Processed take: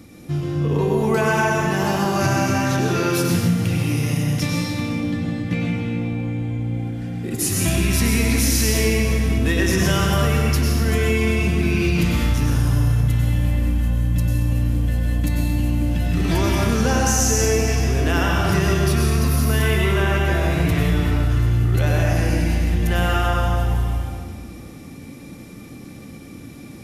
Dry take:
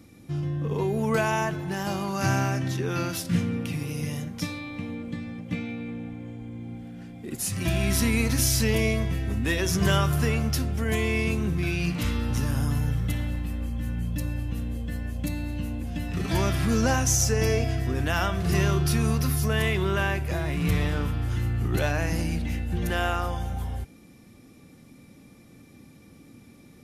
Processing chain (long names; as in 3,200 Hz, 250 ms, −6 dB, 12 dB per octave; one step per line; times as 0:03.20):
reversed playback
upward compression, threshold −44 dBFS
reversed playback
convolution reverb RT60 1.9 s, pre-delay 90 ms, DRR −2 dB
downward compressor 3 to 1, threshold −23 dBFS, peak gain reduction 7.5 dB
level +7 dB